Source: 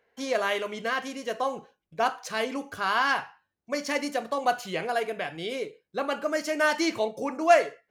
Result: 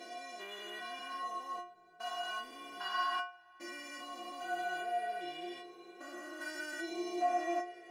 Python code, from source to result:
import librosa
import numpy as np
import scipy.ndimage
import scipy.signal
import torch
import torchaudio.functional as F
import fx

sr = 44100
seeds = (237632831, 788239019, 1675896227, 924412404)

y = fx.spec_steps(x, sr, hold_ms=400)
y = fx.stiff_resonator(y, sr, f0_hz=350.0, decay_s=0.43, stiffness=0.008)
y = F.gain(torch.from_numpy(y), 10.5).numpy()